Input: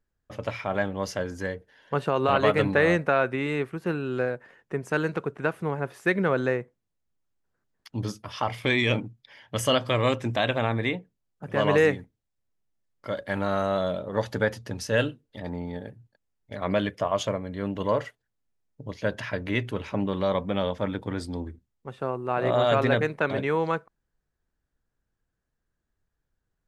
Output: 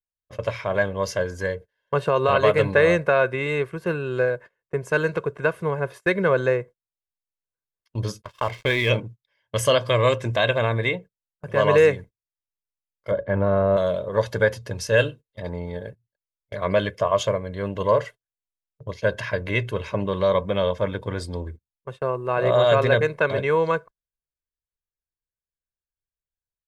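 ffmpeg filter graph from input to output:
-filter_complex "[0:a]asettb=1/sr,asplit=3[a][b][c];[a]atrim=end=8.224[d];[b]atrim=start=8.22:end=8.9,asetpts=PTS-STARTPTS,afade=t=in:d=0.004:c=qsin,afade=t=out:st=0.676:d=0.004:c=qsin,lowpass=4.9k,aeval=exprs='sgn(val(0))*max(abs(val(0))-0.00708,0)':c=same[e];[c]atrim=start=8.896[f];[d][e]acrossfade=d=0.004:c1=hsin:c2=qsin[g];[g][f]acrossfade=d=0.004:c1=qsin:c2=hsin,asettb=1/sr,asplit=3[h][i][j];[h]atrim=end=13.114[k];[i]atrim=start=13.11:end=13.77,asetpts=PTS-STARTPTS,afade=t=in:d=0.004:c=qsin,afade=t=out:st=0.656:d=0.004:c=qsin,lowpass=2k,tiltshelf=f=830:g=6[l];[j]atrim=start=13.766[m];[k][l]acrossfade=d=0.004:c1=hsin:c2=qsin[n];[n][m]acrossfade=d=0.004:c1=qsin:c2=hsin,dynaudnorm=f=140:g=3:m=5dB,aecho=1:1:1.9:0.61,agate=range=-24dB:threshold=-35dB:ratio=16:detection=peak,volume=-2.5dB"

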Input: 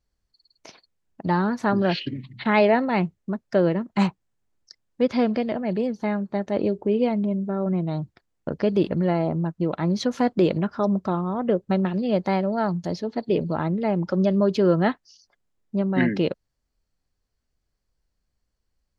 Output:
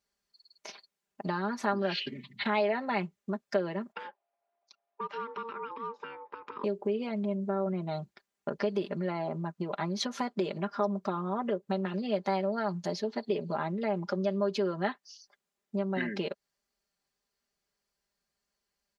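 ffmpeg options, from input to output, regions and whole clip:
-filter_complex "[0:a]asettb=1/sr,asplit=3[a][b][c];[a]atrim=end=3.924[d];[b]atrim=start=3.92:end=6.64,asetpts=PTS-STARTPTS,afade=t=in:d=0.004:c=qsin,afade=t=out:st=2.716:d=0.004:c=qsin,acompressor=threshold=-30dB:ratio=6:attack=3.2:release=140:knee=1:detection=peak,aeval=exprs='val(0)*sin(2*PI*690*n/s)':c=same,highpass=200,lowpass=2.6k[e];[c]atrim=start=6.636[f];[d][e]acrossfade=d=0.004:c1=hsin:c2=qsin[g];[g][f]acrossfade=d=0.004:c1=qsin:c2=hsin,acompressor=threshold=-25dB:ratio=6,highpass=f=560:p=1,aecho=1:1:5:0.71"

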